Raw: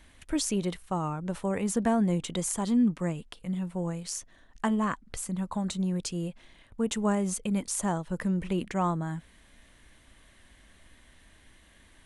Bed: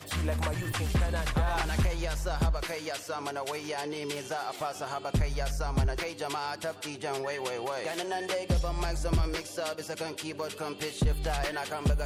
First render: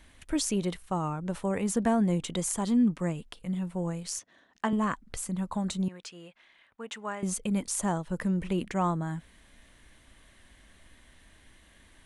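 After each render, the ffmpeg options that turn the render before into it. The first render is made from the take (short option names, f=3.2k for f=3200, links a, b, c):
-filter_complex "[0:a]asettb=1/sr,asplit=3[a][b][c];[a]atrim=end=4.194[d];[b]atrim=start=4.19:end=4.73,asetpts=PTS-STARTPTS,afade=t=in:d=0.004:c=qsin,afade=t=out:st=0.536:d=0.004:c=qsin,highpass=210,lowpass=6k[e];[c]atrim=start=4.726[f];[d][e]acrossfade=d=0.004:c1=hsin:c2=qsin[g];[g][f]acrossfade=d=0.004:c1=qsin:c2=hsin,asettb=1/sr,asplit=3[h][i][j];[h]atrim=end=5.884[k];[i]atrim=start=5.88:end=7.23,asetpts=PTS-STARTPTS,afade=t=in:d=0.004:c=qsin,afade=t=out:st=1.346:d=0.004:c=qsin,bandpass=f=1.8k:t=q:w=0.84[l];[j]atrim=start=7.226[m];[k][l]acrossfade=d=0.004:c1=hsin:c2=qsin[n];[n][m]acrossfade=d=0.004:c1=qsin:c2=hsin"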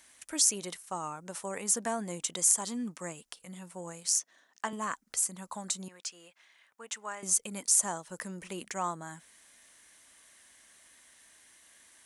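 -af "highpass=f=1k:p=1,highshelf=f=4.6k:t=q:w=1.5:g=7"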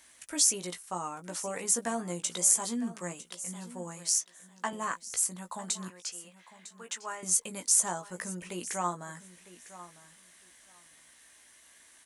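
-filter_complex "[0:a]asplit=2[a][b];[b]adelay=17,volume=-6dB[c];[a][c]amix=inputs=2:normalize=0,aecho=1:1:953|1906:0.158|0.0254"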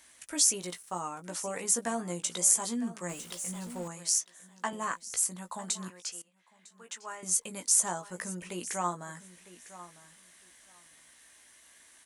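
-filter_complex "[0:a]asettb=1/sr,asplit=3[a][b][c];[a]atrim=end=0.614[d];[b]atrim=start=0.61:end=1.01,asetpts=PTS-STARTPTS,afade=t=in:d=0.004:c=qsin,afade=t=out:st=0.396:d=0.004:c=qsin,aeval=exprs='sgn(val(0))*max(abs(val(0))-0.00106,0)':c=same[e];[c]atrim=start=1.006[f];[d][e]acrossfade=d=0.004:c1=hsin:c2=qsin[g];[g][f]acrossfade=d=0.004:c1=qsin:c2=hsin,asettb=1/sr,asplit=3[h][i][j];[h]atrim=end=3.094[k];[i]atrim=start=3.09:end=3.88,asetpts=PTS-STARTPTS,afade=t=in:d=0.004:c=qsin,afade=t=out:st=0.786:d=0.004:c=qsin,aeval=exprs='val(0)+0.5*0.00668*sgn(val(0))':c=same[l];[j]atrim=start=3.876[m];[k][l]acrossfade=d=0.004:c1=hsin:c2=qsin[n];[n][m]acrossfade=d=0.004:c1=qsin:c2=hsin,asplit=2[o][p];[o]atrim=end=6.22,asetpts=PTS-STARTPTS,afade=t=out:st=6.216:d=0.004:c=hsin:silence=0.1[q];[p]atrim=start=6.22,asetpts=PTS-STARTPTS,afade=t=in:d=1.84:c=qsin:silence=0.1[r];[q][r]concat=n=2:v=0:a=1"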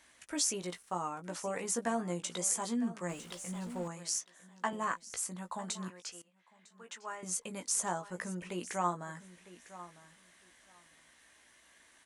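-af "lowpass=f=3.1k:p=1"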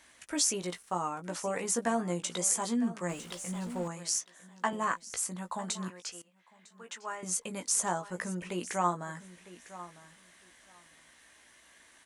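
-af "volume=3.5dB"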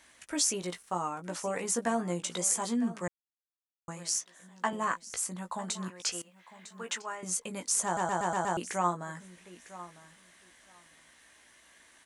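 -filter_complex "[0:a]asplit=11[a][b][c][d][e][f][g][h][i][j][k];[a]atrim=end=3.08,asetpts=PTS-STARTPTS,afade=t=out:st=3.076:d=0.004:c=hsin[l];[b]atrim=start=3.08:end=3.88,asetpts=PTS-STARTPTS,volume=0[m];[c]atrim=start=3.88:end=6.002,asetpts=PTS-STARTPTS,afade=t=in:d=0.004:c=hsin[n];[d]atrim=start=5.998:end=7.022,asetpts=PTS-STARTPTS,volume=8.5dB[o];[e]atrim=start=7.018:end=7.972[p];[f]atrim=start=7.848:end=7.972[q];[g]atrim=start=7.848:end=7.972[r];[h]atrim=start=7.848:end=7.972[s];[i]atrim=start=7.848:end=7.972[t];[j]atrim=start=7.848:end=7.972[u];[k]atrim=start=8.568[v];[l][m][n]concat=n=3:v=0:a=1[w];[w][o]acrossfade=d=0.004:c1=hsin:c2=hsin[x];[x][p]acrossfade=d=0.004:c1=hsin:c2=hsin[y];[y][q]acrossfade=d=0.004:c1=hsin:c2=hsin[z];[z][r]acrossfade=d=0.004:c1=hsin:c2=hsin[aa];[aa][s]acrossfade=d=0.004:c1=hsin:c2=hsin[ab];[ab][t]acrossfade=d=0.004:c1=hsin:c2=hsin[ac];[ac][u]acrossfade=d=0.004:c1=hsin:c2=hsin[ad];[ad][v]acrossfade=d=0.004:c1=hsin:c2=hsin"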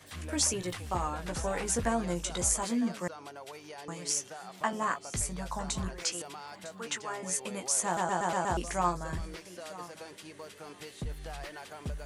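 -filter_complex "[1:a]volume=-11dB[a];[0:a][a]amix=inputs=2:normalize=0"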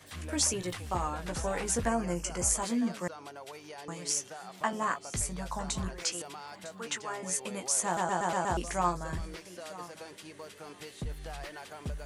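-filter_complex "[0:a]asettb=1/sr,asplit=3[a][b][c];[a]atrim=end=1.894[d];[b]atrim=start=1.89:end=2.48,asetpts=PTS-STARTPTS,afade=t=in:d=0.004:c=qsin,afade=t=out:st=0.586:d=0.004:c=qsin,asuperstop=centerf=3700:order=4:qfactor=2.6[e];[c]atrim=start=2.476[f];[d][e]acrossfade=d=0.004:c1=hsin:c2=qsin[g];[g][f]acrossfade=d=0.004:c1=qsin:c2=hsin"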